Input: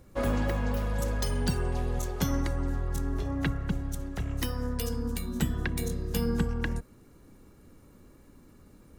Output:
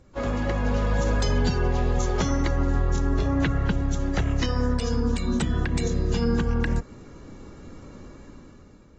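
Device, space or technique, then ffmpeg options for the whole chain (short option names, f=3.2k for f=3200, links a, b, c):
low-bitrate web radio: -af "dynaudnorm=f=360:g=5:m=12dB,alimiter=limit=-14.5dB:level=0:latency=1:release=153" -ar 32000 -c:a aac -b:a 24k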